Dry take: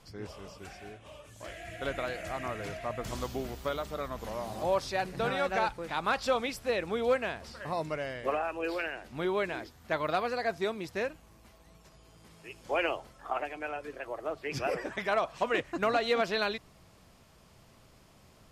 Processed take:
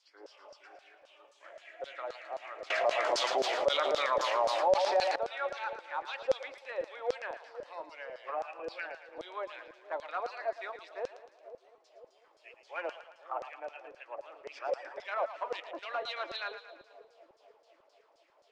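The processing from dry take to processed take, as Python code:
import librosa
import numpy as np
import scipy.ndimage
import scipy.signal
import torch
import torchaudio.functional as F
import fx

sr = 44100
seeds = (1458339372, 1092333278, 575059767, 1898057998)

y = np.clip(10.0 ** (21.5 / 20.0) * x, -1.0, 1.0) / 10.0 ** (21.5 / 20.0)
y = scipy.signal.sosfilt(scipy.signal.ellip(4, 1.0, 40, 300.0, 'highpass', fs=sr, output='sos'), y)
y = fx.small_body(y, sr, hz=(560.0, 870.0), ring_ms=45, db=6)
y = fx.filter_lfo_bandpass(y, sr, shape='saw_down', hz=3.8, low_hz=520.0, high_hz=5700.0, q=2.5)
y = scipy.signal.sosfilt(scipy.signal.butter(2, 8300.0, 'lowpass', fs=sr, output='sos'), y)
y = fx.echo_split(y, sr, split_hz=650.0, low_ms=496, high_ms=112, feedback_pct=52, wet_db=-11.0)
y = fx.env_flatten(y, sr, amount_pct=70, at=(2.7, 5.16))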